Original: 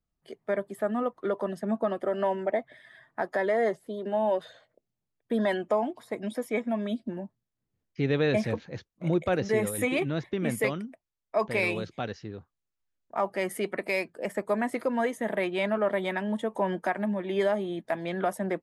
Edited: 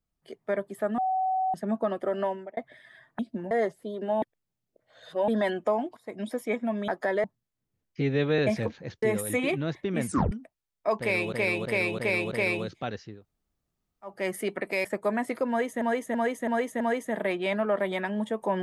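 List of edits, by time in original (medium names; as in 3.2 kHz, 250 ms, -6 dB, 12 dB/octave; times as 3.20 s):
0.98–1.54 s: bleep 754 Hz -23.5 dBFS
2.19–2.57 s: fade out
3.19–3.55 s: swap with 6.92–7.24 s
4.26–5.32 s: reverse
6.01–6.29 s: fade in, from -14.5 dB
8.01–8.26 s: stretch 1.5×
8.90–9.51 s: delete
10.55 s: tape stop 0.25 s
11.48–11.81 s: loop, 5 plays
12.31–13.30 s: room tone, crossfade 0.24 s
14.01–14.29 s: delete
14.93–15.26 s: loop, 5 plays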